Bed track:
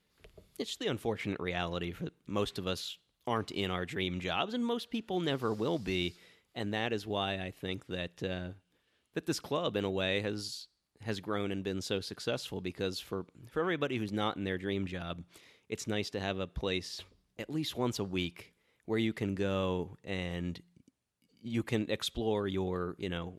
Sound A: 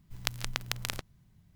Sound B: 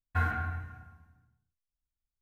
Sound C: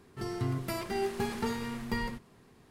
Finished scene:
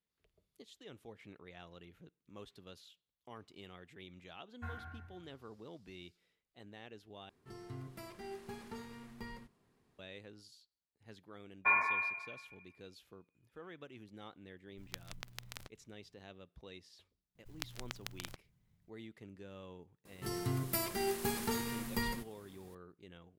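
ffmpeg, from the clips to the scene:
ffmpeg -i bed.wav -i cue0.wav -i cue1.wav -i cue2.wav -filter_complex "[2:a]asplit=2[link_01][link_02];[3:a]asplit=2[link_03][link_04];[1:a]asplit=2[link_05][link_06];[0:a]volume=-19dB[link_07];[link_02]lowpass=frequency=2100:width_type=q:width=0.5098,lowpass=frequency=2100:width_type=q:width=0.6013,lowpass=frequency=2100:width_type=q:width=0.9,lowpass=frequency=2100:width_type=q:width=2.563,afreqshift=-2500[link_08];[link_06]acrusher=bits=6:mode=log:mix=0:aa=0.000001[link_09];[link_04]aemphasis=mode=production:type=50fm[link_10];[link_07]asplit=2[link_11][link_12];[link_11]atrim=end=7.294[link_13];[link_03]atrim=end=2.7,asetpts=PTS-STARTPTS,volume=-14.5dB[link_14];[link_12]atrim=start=9.986[link_15];[link_01]atrim=end=2.21,asetpts=PTS-STARTPTS,volume=-16dB,afade=type=in:duration=0.004:curve=hsin,afade=type=out:start_time=2.206:duration=0.004:curve=hsin,adelay=4470[link_16];[link_08]atrim=end=2.21,asetpts=PTS-STARTPTS,volume=-1dB,afade=type=in:duration=0.004:curve=hsin,afade=type=out:start_time=2.206:duration=0.004:curve=hsin,adelay=11500[link_17];[link_05]atrim=end=1.55,asetpts=PTS-STARTPTS,volume=-14dB,afade=type=in:duration=0.004:curve=hsin,afade=type=out:start_time=1.546:duration=0.004:curve=hsin,adelay=14670[link_18];[link_09]atrim=end=1.55,asetpts=PTS-STARTPTS,volume=-11.5dB,afade=type=in:duration=0.004:curve=hsin,afade=type=out:start_time=1.546:duration=0.004:curve=hsin,adelay=17350[link_19];[link_10]atrim=end=2.7,asetpts=PTS-STARTPTS,volume=-3.5dB,afade=type=in:duration=0.004:curve=hsin,afade=type=out:start_time=2.696:duration=0.004:curve=hsin,adelay=20050[link_20];[link_13][link_14]acrossfade=duration=0.004:curve1=hsin:curve2=hsin[link_21];[link_21][link_15]acrossfade=duration=0.004:curve1=hsin:curve2=hsin[link_22];[link_22][link_16][link_17][link_18][link_19][link_20]amix=inputs=6:normalize=0" out.wav

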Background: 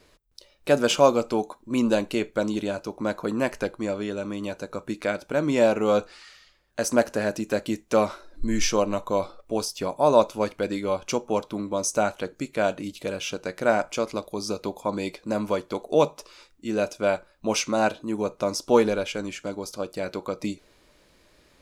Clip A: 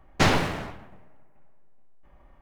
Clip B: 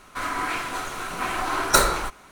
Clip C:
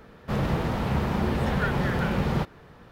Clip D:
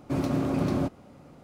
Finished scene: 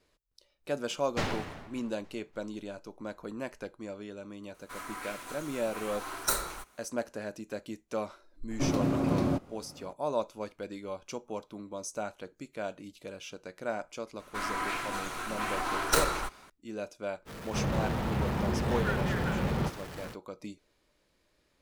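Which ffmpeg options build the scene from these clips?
ffmpeg -i bed.wav -i cue0.wav -i cue1.wav -i cue2.wav -i cue3.wav -filter_complex "[2:a]asplit=2[link_01][link_02];[0:a]volume=-13dB[link_03];[1:a]aecho=1:1:290|580|870|1160:0.075|0.039|0.0203|0.0105[link_04];[link_01]highshelf=frequency=6900:gain=11.5[link_05];[link_02]aeval=exprs='clip(val(0),-1,0.0631)':channel_layout=same[link_06];[3:a]aeval=exprs='val(0)+0.5*0.0211*sgn(val(0))':channel_layout=same[link_07];[link_04]atrim=end=2.41,asetpts=PTS-STARTPTS,volume=-12dB,afade=type=in:duration=0.004:curve=hsin,afade=type=out:start_time=2.406:duration=0.004:curve=hsin,adelay=970[link_08];[link_05]atrim=end=2.31,asetpts=PTS-STARTPTS,volume=-15dB,afade=type=in:duration=0.004:curve=hsin,afade=type=out:start_time=2.306:duration=0.004:curve=hsin,adelay=4540[link_09];[4:a]atrim=end=1.43,asetpts=PTS-STARTPTS,volume=-1.5dB,afade=type=in:duration=0.004:curve=hsin,afade=type=out:start_time=1.426:duration=0.004:curve=hsin,adelay=374850S[link_10];[link_06]atrim=end=2.31,asetpts=PTS-STARTPTS,volume=-5.5dB,afade=type=in:duration=0.004:curve=hsin,afade=type=out:start_time=2.306:duration=0.004:curve=hsin,adelay=14190[link_11];[link_07]atrim=end=2.91,asetpts=PTS-STARTPTS,volume=-6dB,afade=type=in:duration=0.05,afade=type=out:start_time=2.86:duration=0.05,adelay=17250[link_12];[link_03][link_08][link_09][link_10][link_11][link_12]amix=inputs=6:normalize=0" out.wav

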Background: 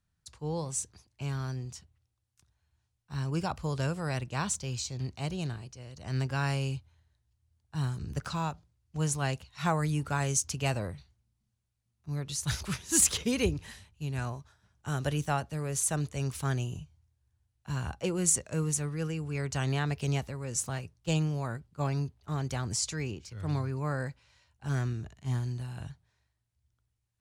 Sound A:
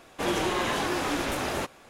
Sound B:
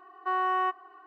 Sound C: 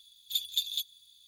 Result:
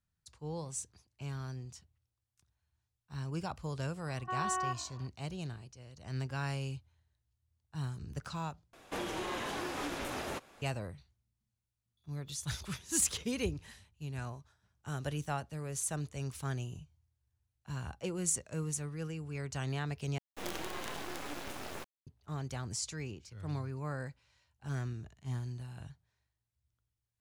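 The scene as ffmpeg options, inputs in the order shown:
ffmpeg -i bed.wav -i cue0.wav -i cue1.wav -i cue2.wav -filter_complex "[1:a]asplit=2[link_01][link_02];[0:a]volume=-6.5dB[link_03];[2:a]asplit=5[link_04][link_05][link_06][link_07][link_08];[link_05]adelay=121,afreqshift=-48,volume=-20dB[link_09];[link_06]adelay=242,afreqshift=-96,volume=-25.5dB[link_10];[link_07]adelay=363,afreqshift=-144,volume=-31dB[link_11];[link_08]adelay=484,afreqshift=-192,volume=-36.5dB[link_12];[link_04][link_09][link_10][link_11][link_12]amix=inputs=5:normalize=0[link_13];[link_01]alimiter=limit=-23dB:level=0:latency=1:release=326[link_14];[3:a]highshelf=frequency=2100:gain=-11.5[link_15];[link_02]acrusher=bits=4:dc=4:mix=0:aa=0.000001[link_16];[link_03]asplit=3[link_17][link_18][link_19];[link_17]atrim=end=8.734[link_20];[link_14]atrim=end=1.89,asetpts=PTS-STARTPTS,volume=-5dB[link_21];[link_18]atrim=start=10.616:end=20.184[link_22];[link_16]atrim=end=1.89,asetpts=PTS-STARTPTS,volume=-10dB[link_23];[link_19]atrim=start=22.066[link_24];[link_13]atrim=end=1.06,asetpts=PTS-STARTPTS,volume=-8dB,afade=type=in:duration=0.004:curve=hsin,afade=type=out:start_time=1.056:duration=0.004:curve=hsin,adelay=4020[link_25];[link_15]atrim=end=1.27,asetpts=PTS-STARTPTS,volume=-15dB,afade=type=in:duration=0.004:curve=hsin,afade=type=out:start_time=1.266:duration=0.004:curve=hsin,adelay=11970[link_26];[link_20][link_21]acrossfade=duration=0.004:curve1=hsin:curve2=hsin[link_27];[link_27][link_22]acrossfade=duration=0.004:curve1=hsin:curve2=hsin[link_28];[link_28][link_23]acrossfade=duration=0.004:curve1=hsin:curve2=hsin[link_29];[link_29][link_24]acrossfade=duration=0.004:curve1=hsin:curve2=hsin[link_30];[link_30][link_25][link_26]amix=inputs=3:normalize=0" out.wav

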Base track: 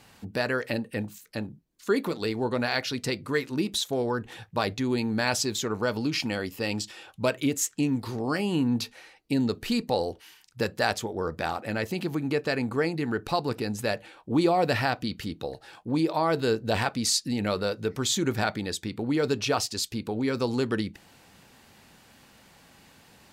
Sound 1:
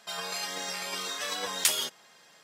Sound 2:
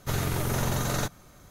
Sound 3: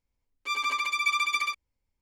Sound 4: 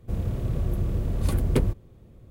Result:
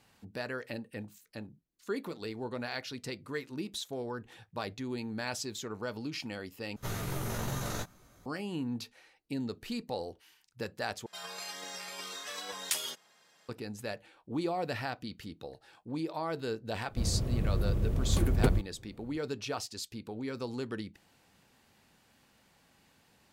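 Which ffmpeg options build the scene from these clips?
ffmpeg -i bed.wav -i cue0.wav -i cue1.wav -i cue2.wav -i cue3.wav -filter_complex "[0:a]volume=-10.5dB[link_01];[2:a]flanger=delay=15.5:depth=3:speed=2.5[link_02];[link_01]asplit=3[link_03][link_04][link_05];[link_03]atrim=end=6.764[link_06];[link_02]atrim=end=1.5,asetpts=PTS-STARTPTS,volume=-4.5dB[link_07];[link_04]atrim=start=8.256:end=11.064[link_08];[1:a]atrim=end=2.43,asetpts=PTS-STARTPTS,volume=-7.5dB[link_09];[link_05]atrim=start=13.486[link_10];[4:a]atrim=end=2.3,asetpts=PTS-STARTPTS,volume=-3.5dB,afade=type=in:duration=0.004:curve=hsin,afade=type=out:start_time=2.296:duration=0.004:curve=hsin,adelay=16880[link_11];[link_06][link_07]acrossfade=duration=0.004:curve1=hsin:curve2=hsin[link_12];[link_12][link_08]acrossfade=duration=0.004:curve1=hsin:curve2=hsin[link_13];[link_13][link_09]acrossfade=duration=0.004:curve1=hsin:curve2=hsin[link_14];[link_14][link_10]acrossfade=duration=0.004:curve1=hsin:curve2=hsin[link_15];[link_15][link_11]amix=inputs=2:normalize=0" out.wav

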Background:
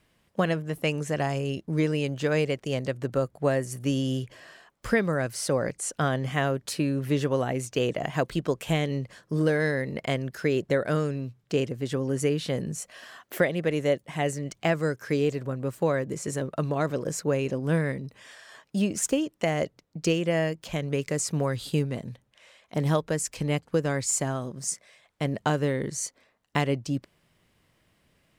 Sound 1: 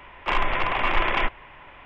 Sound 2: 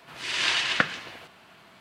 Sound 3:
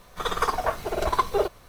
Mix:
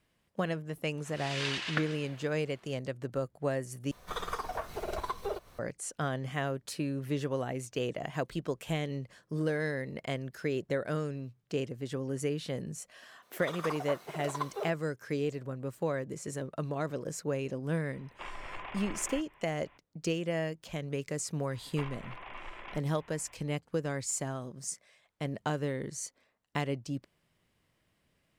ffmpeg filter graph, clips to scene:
ffmpeg -i bed.wav -i cue0.wav -i cue1.wav -i cue2.wav -filter_complex "[3:a]asplit=2[link_01][link_02];[1:a]asplit=2[link_03][link_04];[0:a]volume=-7.5dB[link_05];[link_01]acompressor=threshold=-28dB:ratio=3:attack=8.8:release=411:knee=1:detection=peak[link_06];[link_02]highpass=310[link_07];[link_03]alimiter=limit=-16dB:level=0:latency=1:release=155[link_08];[link_04]acompressor=threshold=-34dB:ratio=3:attack=72:release=485:knee=1:detection=peak[link_09];[link_05]asplit=2[link_10][link_11];[link_10]atrim=end=3.914[link_12];[link_06]atrim=end=1.68,asetpts=PTS-STARTPTS,volume=-5dB[link_13];[link_11]atrim=start=5.586[link_14];[2:a]atrim=end=1.8,asetpts=PTS-STARTPTS,volume=-10.5dB,afade=type=in:duration=0.004:curve=hsin,afade=type=out:start_time=1.796:duration=0.004:curve=hsin,adelay=970[link_15];[link_07]atrim=end=1.68,asetpts=PTS-STARTPTS,volume=-13dB,afade=type=in:duration=0.004:curve=hsin,afade=type=out:start_time=1.676:duration=0.004:curve=hsin,adelay=13220[link_16];[link_08]atrim=end=1.85,asetpts=PTS-STARTPTS,volume=-15.5dB,afade=type=in:duration=0.004:curve=hsin,afade=type=out:start_time=1.846:duration=0.004:curve=hsin,adelay=17930[link_17];[link_09]atrim=end=1.85,asetpts=PTS-STARTPTS,volume=-13dB,afade=type=in:duration=0.004:curve=hsin,afade=type=out:start_time=1.846:duration=0.004:curve=hsin,adelay=21510[link_18];[link_12][link_13]acrossfade=duration=0.004:curve1=hsin:curve2=hsin[link_19];[link_19][link_14]acrossfade=duration=0.004:curve1=hsin:curve2=hsin[link_20];[link_20][link_15][link_16][link_17][link_18]amix=inputs=5:normalize=0" out.wav

